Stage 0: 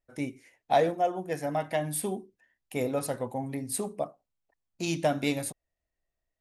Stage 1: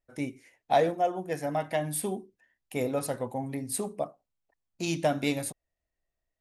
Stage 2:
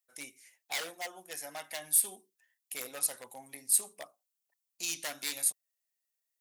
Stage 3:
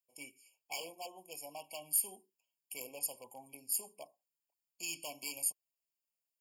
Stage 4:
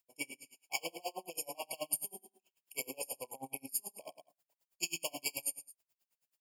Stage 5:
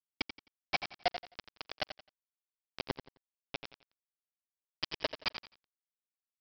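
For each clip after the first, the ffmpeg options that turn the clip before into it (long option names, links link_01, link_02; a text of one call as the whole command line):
ffmpeg -i in.wav -af anull out.wav
ffmpeg -i in.wav -af "acontrast=66,aeval=exprs='0.158*(abs(mod(val(0)/0.158+3,4)-2)-1)':channel_layout=same,aderivative" out.wav
ffmpeg -i in.wav -af "afftfilt=real='re*eq(mod(floor(b*sr/1024/1100),2),0)':imag='im*eq(mod(floor(b*sr/1024/1100),2),0)':win_size=1024:overlap=0.75,volume=-3dB" out.wav
ffmpeg -i in.wav -af "acompressor=threshold=-43dB:ratio=6,aecho=1:1:30|67.5|114.4|173|246.2:0.631|0.398|0.251|0.158|0.1,aeval=exprs='val(0)*pow(10,-31*(0.5-0.5*cos(2*PI*9.3*n/s))/20)':channel_layout=same,volume=12dB" out.wav
ffmpeg -i in.wav -af "aphaser=in_gain=1:out_gain=1:delay=1.4:decay=0.63:speed=1.4:type=sinusoidal,aresample=11025,acrusher=bits=4:mix=0:aa=0.000001,aresample=44100,aecho=1:1:87|174|261:0.299|0.0776|0.0202,volume=1.5dB" out.wav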